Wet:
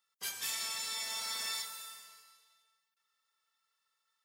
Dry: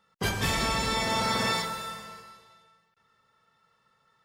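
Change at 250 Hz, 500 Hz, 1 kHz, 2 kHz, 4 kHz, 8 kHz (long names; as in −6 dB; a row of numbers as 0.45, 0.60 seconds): −31.5, −24.5, −18.5, −13.0, −7.0, −2.0 decibels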